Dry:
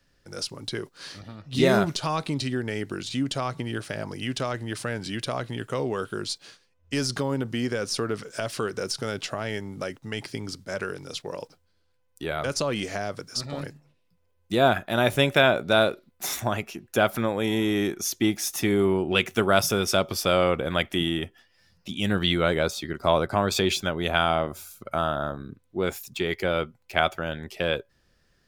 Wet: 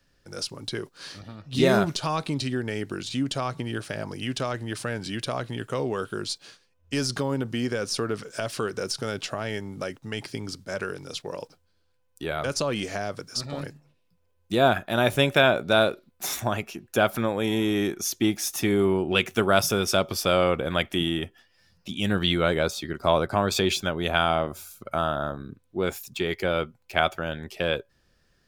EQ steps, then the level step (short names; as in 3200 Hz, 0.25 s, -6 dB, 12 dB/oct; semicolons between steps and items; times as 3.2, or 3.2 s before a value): notch 2000 Hz, Q 24; 0.0 dB